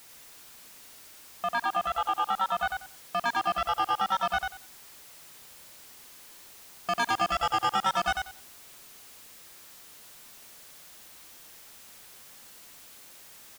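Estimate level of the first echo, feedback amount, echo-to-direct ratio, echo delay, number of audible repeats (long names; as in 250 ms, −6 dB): −4.0 dB, 20%, −4.0 dB, 93 ms, 3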